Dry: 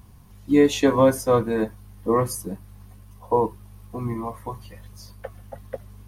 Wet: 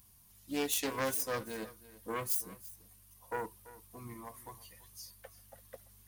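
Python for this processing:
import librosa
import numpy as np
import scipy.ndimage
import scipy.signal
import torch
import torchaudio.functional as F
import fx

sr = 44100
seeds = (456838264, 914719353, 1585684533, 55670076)

y = fx.self_delay(x, sr, depth_ms=0.26)
y = librosa.effects.preemphasis(y, coef=0.9, zi=[0.0])
y = y + 10.0 ** (-17.5 / 20.0) * np.pad(y, (int(337 * sr / 1000.0), 0))[:len(y)]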